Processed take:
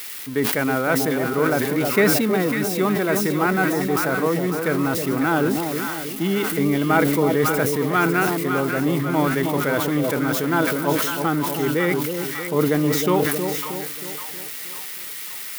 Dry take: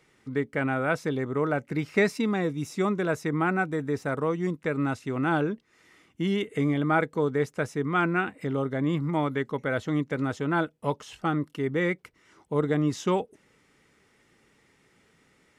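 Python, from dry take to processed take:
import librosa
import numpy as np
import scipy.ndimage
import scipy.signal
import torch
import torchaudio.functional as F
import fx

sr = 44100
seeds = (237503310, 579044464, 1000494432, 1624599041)

y = x + 0.5 * 10.0 ** (-27.0 / 20.0) * np.diff(np.sign(x), prepend=np.sign(x[:1]))
y = scipy.signal.sosfilt(scipy.signal.butter(2, 150.0, 'highpass', fs=sr, output='sos'), y)
y = fx.peak_eq(y, sr, hz=7100.0, db=-7.0, octaves=1.1)
y = fx.echo_split(y, sr, split_hz=920.0, low_ms=316, high_ms=550, feedback_pct=52, wet_db=-6.0)
y = fx.sustainer(y, sr, db_per_s=33.0)
y = y * librosa.db_to_amplitude(5.0)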